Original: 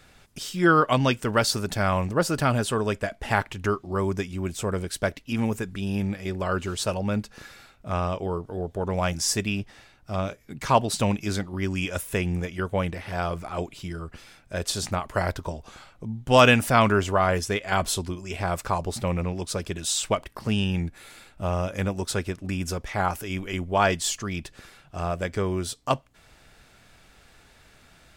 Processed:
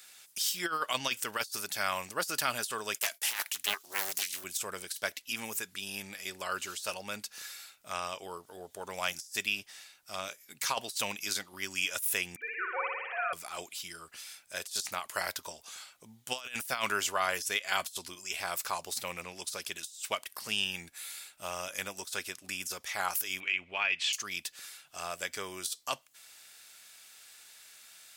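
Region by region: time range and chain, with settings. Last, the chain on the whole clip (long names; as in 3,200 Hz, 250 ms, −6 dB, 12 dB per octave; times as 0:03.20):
0:02.94–0:04.44: RIAA equalisation recording + downward expander −47 dBFS + highs frequency-modulated by the lows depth 0.96 ms
0:12.36–0:13.33: three sine waves on the formant tracks + high-pass filter 470 Hz 24 dB per octave + flutter between parallel walls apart 10.1 metres, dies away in 1.2 s
0:23.40–0:24.13: low-pass with resonance 2,500 Hz, resonance Q 6.1 + downward compressor 2 to 1, threshold −29 dBFS
whole clip: first difference; compressor whose output falls as the input rises −37 dBFS, ratio −0.5; dynamic equaliser 8,400 Hz, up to −4 dB, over −51 dBFS, Q 1.8; level +6 dB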